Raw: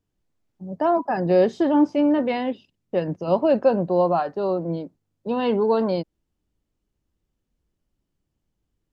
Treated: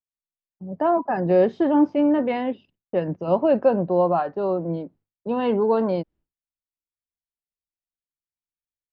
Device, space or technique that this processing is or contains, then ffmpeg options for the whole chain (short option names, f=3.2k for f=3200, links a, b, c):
hearing-loss simulation: -af "lowpass=2.7k,agate=range=-33dB:threshold=-49dB:ratio=3:detection=peak"